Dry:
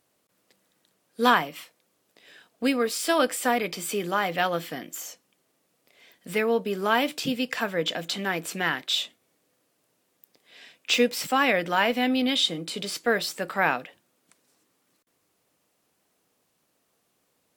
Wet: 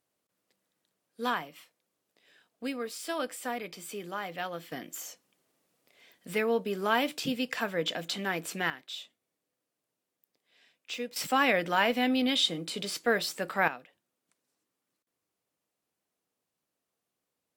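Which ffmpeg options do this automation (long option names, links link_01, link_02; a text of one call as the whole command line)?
ffmpeg -i in.wav -af "asetnsamples=nb_out_samples=441:pad=0,asendcmd='4.72 volume volume -4dB;8.7 volume volume -15dB;11.16 volume volume -3dB;13.68 volume volume -14dB',volume=-11dB" out.wav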